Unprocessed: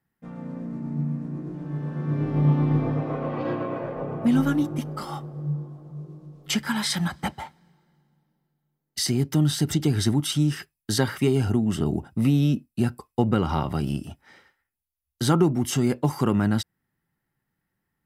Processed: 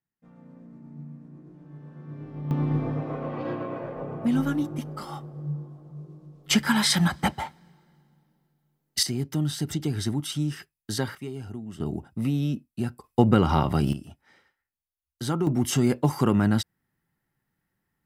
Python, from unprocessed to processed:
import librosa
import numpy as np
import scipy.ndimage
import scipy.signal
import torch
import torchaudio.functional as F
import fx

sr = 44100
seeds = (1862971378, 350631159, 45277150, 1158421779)

y = fx.gain(x, sr, db=fx.steps((0.0, -14.0), (2.51, -3.5), (6.51, 4.0), (9.03, -5.5), (11.15, -14.5), (11.8, -5.5), (13.04, 3.0), (13.93, -7.0), (15.47, 0.5)))